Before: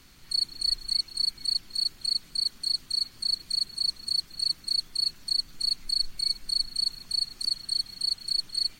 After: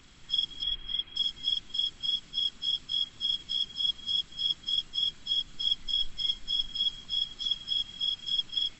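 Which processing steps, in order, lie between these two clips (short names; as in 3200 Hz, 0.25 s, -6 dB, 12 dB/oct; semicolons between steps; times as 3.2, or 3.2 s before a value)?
nonlinear frequency compression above 1900 Hz 1.5:1; 0.63–1.16 resonant high shelf 3700 Hz -13 dB, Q 1.5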